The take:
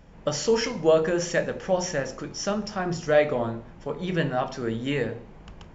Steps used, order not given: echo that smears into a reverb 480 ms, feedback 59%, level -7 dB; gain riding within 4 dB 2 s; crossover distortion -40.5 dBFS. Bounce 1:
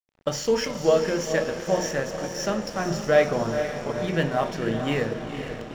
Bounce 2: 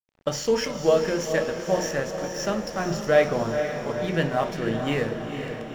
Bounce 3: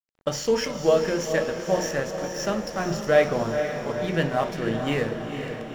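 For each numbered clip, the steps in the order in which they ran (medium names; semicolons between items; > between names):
gain riding > echo that smears into a reverb > crossover distortion; gain riding > crossover distortion > echo that smears into a reverb; crossover distortion > gain riding > echo that smears into a reverb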